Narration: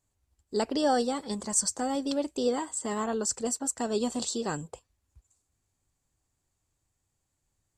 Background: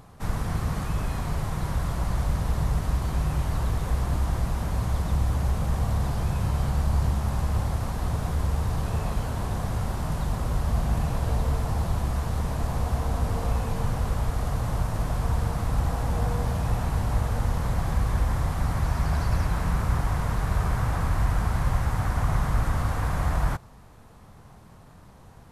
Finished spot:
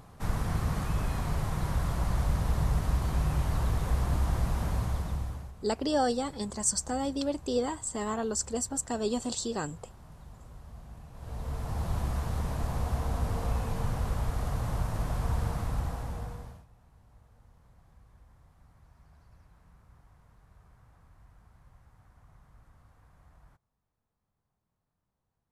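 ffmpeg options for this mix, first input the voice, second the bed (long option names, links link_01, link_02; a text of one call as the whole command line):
ffmpeg -i stem1.wav -i stem2.wav -filter_complex "[0:a]adelay=5100,volume=-1.5dB[link_01];[1:a]volume=15.5dB,afade=type=out:start_time=4.68:duration=0.84:silence=0.1,afade=type=in:start_time=11.13:duration=0.85:silence=0.125893,afade=type=out:start_time=15.51:duration=1.15:silence=0.0334965[link_02];[link_01][link_02]amix=inputs=2:normalize=0" out.wav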